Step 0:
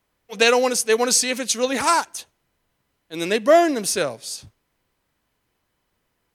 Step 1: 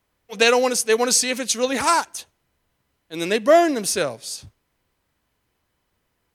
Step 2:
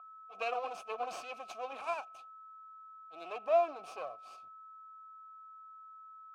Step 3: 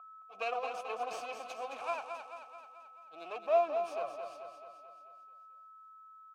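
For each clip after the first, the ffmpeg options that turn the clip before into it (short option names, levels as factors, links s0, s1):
-af "equalizer=f=76:w=1.6:g=4"
-filter_complex "[0:a]aeval=exprs='max(val(0),0)':c=same,aeval=exprs='val(0)+0.0178*sin(2*PI*1300*n/s)':c=same,asplit=3[s0][s1][s2];[s0]bandpass=f=730:t=q:w=8,volume=1[s3];[s1]bandpass=f=1090:t=q:w=8,volume=0.501[s4];[s2]bandpass=f=2440:t=q:w=8,volume=0.355[s5];[s3][s4][s5]amix=inputs=3:normalize=0,volume=0.75"
-af "aecho=1:1:218|436|654|872|1090|1308|1526:0.447|0.246|0.135|0.0743|0.0409|0.0225|0.0124"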